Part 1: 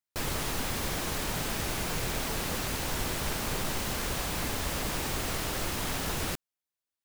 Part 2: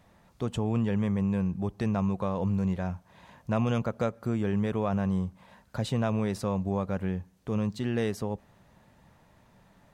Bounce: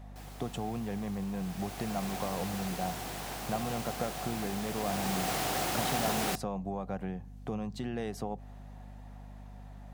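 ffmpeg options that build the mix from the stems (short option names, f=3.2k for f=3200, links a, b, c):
-filter_complex "[0:a]afade=t=in:st=1.35:d=0.78:silence=0.266073,afade=t=in:st=4.73:d=0.63:silence=0.398107[a];[1:a]acompressor=threshold=-33dB:ratio=12,volume=1dB[b];[a][b]amix=inputs=2:normalize=0,highpass=f=120:w=0.5412,highpass=f=120:w=1.3066,equalizer=f=740:w=6.5:g=13,aeval=exprs='val(0)+0.00501*(sin(2*PI*50*n/s)+sin(2*PI*2*50*n/s)/2+sin(2*PI*3*50*n/s)/3+sin(2*PI*4*50*n/s)/4+sin(2*PI*5*50*n/s)/5)':c=same"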